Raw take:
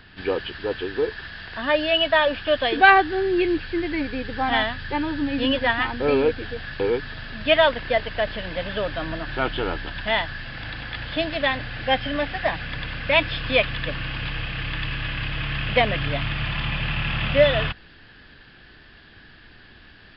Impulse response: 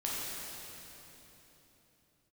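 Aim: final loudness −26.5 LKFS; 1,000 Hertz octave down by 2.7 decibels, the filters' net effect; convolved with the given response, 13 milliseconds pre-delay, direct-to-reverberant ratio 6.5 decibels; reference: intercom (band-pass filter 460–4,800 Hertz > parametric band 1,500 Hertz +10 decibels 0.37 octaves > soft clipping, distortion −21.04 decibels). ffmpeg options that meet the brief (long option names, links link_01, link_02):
-filter_complex "[0:a]equalizer=frequency=1000:width_type=o:gain=-5,asplit=2[link_01][link_02];[1:a]atrim=start_sample=2205,adelay=13[link_03];[link_02][link_03]afir=irnorm=-1:irlink=0,volume=-12dB[link_04];[link_01][link_04]amix=inputs=2:normalize=0,highpass=460,lowpass=4800,equalizer=frequency=1500:width_type=o:width=0.37:gain=10,asoftclip=threshold=-1.5dB,volume=-3.5dB"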